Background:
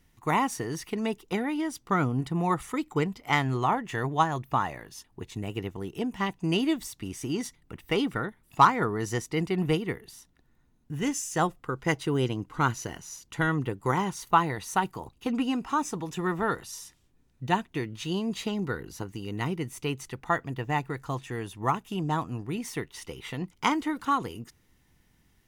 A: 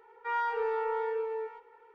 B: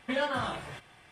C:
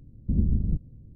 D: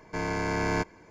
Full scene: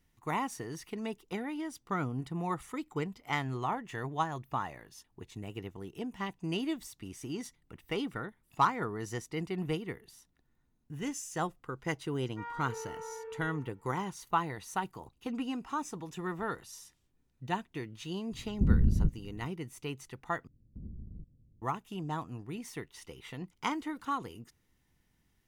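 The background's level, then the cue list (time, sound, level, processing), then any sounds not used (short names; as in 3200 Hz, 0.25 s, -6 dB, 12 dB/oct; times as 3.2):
background -8 dB
12.12 add A -11.5 dB
18.32 add C -1 dB
20.47 replace with C -16 dB + compressor 2:1, threshold -28 dBFS
not used: B, D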